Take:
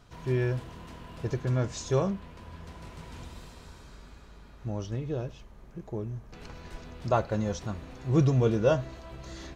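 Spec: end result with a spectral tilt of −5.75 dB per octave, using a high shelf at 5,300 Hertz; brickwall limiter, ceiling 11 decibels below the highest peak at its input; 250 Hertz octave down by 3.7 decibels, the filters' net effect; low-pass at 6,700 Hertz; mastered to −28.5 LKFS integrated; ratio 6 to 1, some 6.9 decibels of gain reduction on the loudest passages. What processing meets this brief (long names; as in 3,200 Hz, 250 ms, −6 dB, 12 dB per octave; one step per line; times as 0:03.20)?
low-pass filter 6,700 Hz
parametric band 250 Hz −6 dB
high-shelf EQ 5,300 Hz +3 dB
downward compressor 6 to 1, threshold −27 dBFS
level +13 dB
brickwall limiter −17 dBFS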